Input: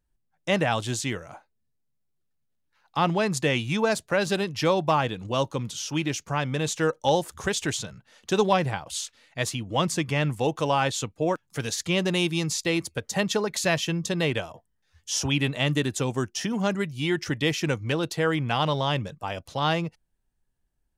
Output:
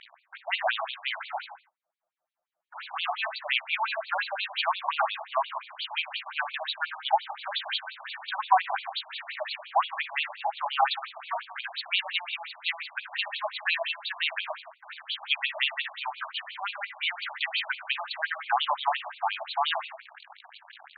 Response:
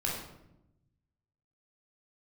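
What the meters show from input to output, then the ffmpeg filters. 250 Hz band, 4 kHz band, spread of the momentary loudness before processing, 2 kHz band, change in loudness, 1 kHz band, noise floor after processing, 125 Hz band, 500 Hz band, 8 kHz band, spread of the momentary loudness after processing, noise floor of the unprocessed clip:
under -40 dB, 0.0 dB, 7 LU, +0.5 dB, -4.0 dB, +0.5 dB, -72 dBFS, under -40 dB, -11.5 dB, under -40 dB, 11 LU, -74 dBFS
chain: -filter_complex "[0:a]aeval=exprs='val(0)+0.5*0.0335*sgn(val(0))':c=same,asplit=2[a][b];[1:a]atrim=start_sample=2205,afade=t=out:st=0.29:d=0.01,atrim=end_sample=13230[c];[b][c]afir=irnorm=-1:irlink=0,volume=-8dB[d];[a][d]amix=inputs=2:normalize=0,afftfilt=real='re*between(b*sr/1024,830*pow(3300/830,0.5+0.5*sin(2*PI*5.7*pts/sr))/1.41,830*pow(3300/830,0.5+0.5*sin(2*PI*5.7*pts/sr))*1.41)':imag='im*between(b*sr/1024,830*pow(3300/830,0.5+0.5*sin(2*PI*5.7*pts/sr))/1.41,830*pow(3300/830,0.5+0.5*sin(2*PI*5.7*pts/sr))*1.41)':win_size=1024:overlap=0.75"

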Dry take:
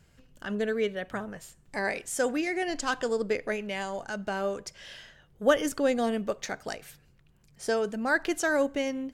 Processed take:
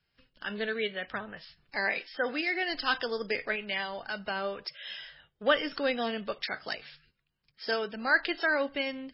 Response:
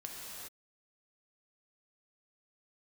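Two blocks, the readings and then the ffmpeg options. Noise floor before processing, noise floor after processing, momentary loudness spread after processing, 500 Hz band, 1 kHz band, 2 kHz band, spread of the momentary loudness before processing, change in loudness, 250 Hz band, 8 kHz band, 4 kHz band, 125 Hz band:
-61 dBFS, -79 dBFS, 13 LU, -4.5 dB, -1.5 dB, +2.5 dB, 13 LU, -2.0 dB, -6.5 dB, under -35 dB, +5.0 dB, n/a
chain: -filter_complex "[0:a]tiltshelf=f=1.1k:g=-7,agate=range=-14dB:threshold=-60dB:ratio=16:detection=peak,acrossover=split=140|2300[a][b][c];[a]acrusher=samples=11:mix=1:aa=0.000001:lfo=1:lforange=17.6:lforate=0.26[d];[d][b][c]amix=inputs=3:normalize=0" -ar 12000 -c:a libmp3lame -b:a 16k

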